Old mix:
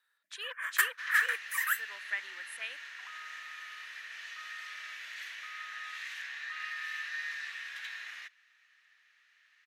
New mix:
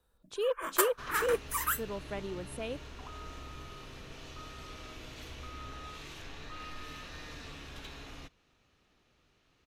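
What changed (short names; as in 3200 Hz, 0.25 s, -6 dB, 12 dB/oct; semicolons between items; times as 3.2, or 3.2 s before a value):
first sound +4.0 dB; master: remove resonant high-pass 1800 Hz, resonance Q 6.8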